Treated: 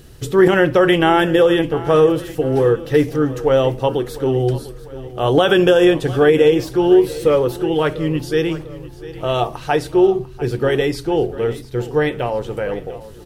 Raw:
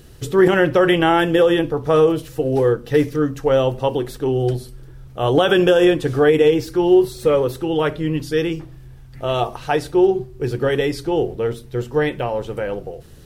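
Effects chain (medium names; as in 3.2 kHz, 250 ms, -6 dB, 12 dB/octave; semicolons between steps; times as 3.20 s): feedback delay 697 ms, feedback 47%, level -17 dB; trim +1.5 dB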